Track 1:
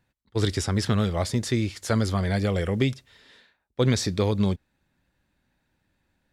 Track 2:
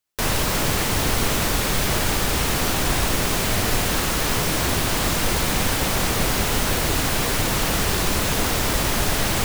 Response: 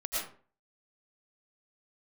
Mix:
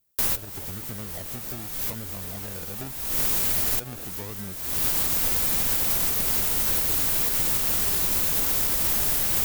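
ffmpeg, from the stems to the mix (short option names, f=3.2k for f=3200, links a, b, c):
-filter_complex "[0:a]acrusher=samples=35:mix=1:aa=0.000001:lfo=1:lforange=21:lforate=0.84,volume=-15dB,asplit=2[a][b];[1:a]aemphasis=mode=production:type=50fm,volume=-5dB[c];[b]apad=whole_len=416522[d];[c][d]sidechaincompress=threshold=-56dB:ratio=8:attack=16:release=298[e];[a][e]amix=inputs=2:normalize=0,alimiter=limit=-13dB:level=0:latency=1:release=248"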